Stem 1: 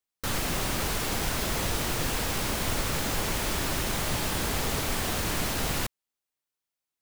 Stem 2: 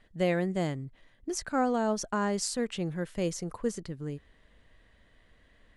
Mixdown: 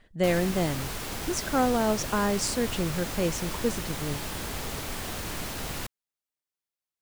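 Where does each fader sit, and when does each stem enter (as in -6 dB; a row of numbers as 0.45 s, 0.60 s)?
-5.5 dB, +3.0 dB; 0.00 s, 0.00 s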